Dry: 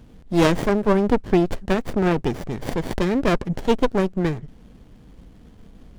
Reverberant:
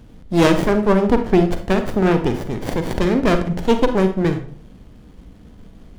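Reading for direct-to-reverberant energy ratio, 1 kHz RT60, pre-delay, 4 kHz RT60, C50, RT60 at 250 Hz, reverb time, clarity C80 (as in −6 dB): 7.0 dB, 0.45 s, 35 ms, 0.35 s, 9.5 dB, 0.60 s, 0.50 s, 14.0 dB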